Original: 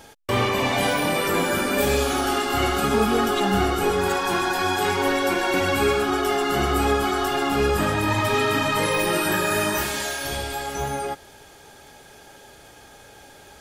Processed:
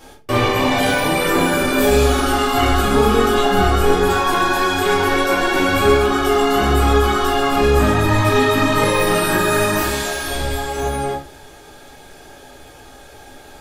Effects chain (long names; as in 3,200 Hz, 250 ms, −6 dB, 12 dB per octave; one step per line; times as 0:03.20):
rectangular room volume 200 cubic metres, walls furnished, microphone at 3.4 metres
level −2 dB